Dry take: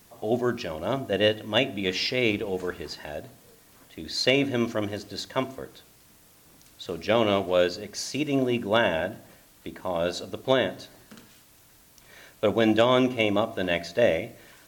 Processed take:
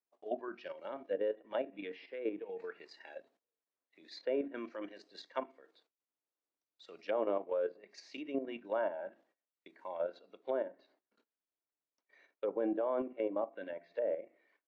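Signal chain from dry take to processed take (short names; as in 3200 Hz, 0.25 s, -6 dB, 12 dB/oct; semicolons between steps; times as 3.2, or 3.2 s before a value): spectral noise reduction 10 dB; HPF 310 Hz 24 dB/oct; gate -57 dBFS, range -22 dB; treble ducked by the level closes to 1000 Hz, closed at -23.5 dBFS; level quantiser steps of 9 dB; tape spacing loss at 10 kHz 21 dB, from 10.16 s at 10 kHz 34 dB; gain -4 dB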